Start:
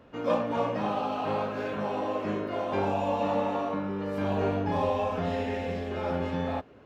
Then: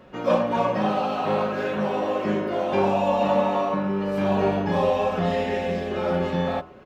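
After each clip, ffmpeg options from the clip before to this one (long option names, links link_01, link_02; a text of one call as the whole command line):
ffmpeg -i in.wav -af "aecho=1:1:5.4:0.52,bandreject=frequency=80.99:width_type=h:width=4,bandreject=frequency=161.98:width_type=h:width=4,bandreject=frequency=242.97:width_type=h:width=4,bandreject=frequency=323.96:width_type=h:width=4,bandreject=frequency=404.95:width_type=h:width=4,bandreject=frequency=485.94:width_type=h:width=4,bandreject=frequency=566.93:width_type=h:width=4,bandreject=frequency=647.92:width_type=h:width=4,bandreject=frequency=728.91:width_type=h:width=4,bandreject=frequency=809.9:width_type=h:width=4,bandreject=frequency=890.89:width_type=h:width=4,bandreject=frequency=971.88:width_type=h:width=4,bandreject=frequency=1052.87:width_type=h:width=4,bandreject=frequency=1133.86:width_type=h:width=4,bandreject=frequency=1214.85:width_type=h:width=4,bandreject=frequency=1295.84:width_type=h:width=4,bandreject=frequency=1376.83:width_type=h:width=4,bandreject=frequency=1457.82:width_type=h:width=4,volume=5.5dB" out.wav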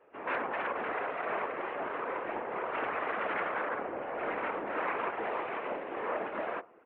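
ffmpeg -i in.wav -af "aeval=exprs='0.422*(cos(1*acos(clip(val(0)/0.422,-1,1)))-cos(1*PI/2))+0.188*(cos(3*acos(clip(val(0)/0.422,-1,1)))-cos(3*PI/2))+0.0376*(cos(7*acos(clip(val(0)/0.422,-1,1)))-cos(7*PI/2))+0.106*(cos(8*acos(clip(val(0)/0.422,-1,1)))-cos(8*PI/2))':channel_layout=same,highpass=frequency=410:width_type=q:width=0.5412,highpass=frequency=410:width_type=q:width=1.307,lowpass=frequency=2600:width_type=q:width=0.5176,lowpass=frequency=2600:width_type=q:width=0.7071,lowpass=frequency=2600:width_type=q:width=1.932,afreqshift=-53,afftfilt=real='hypot(re,im)*cos(2*PI*random(0))':imag='hypot(re,im)*sin(2*PI*random(1))':win_size=512:overlap=0.75,volume=-4dB" out.wav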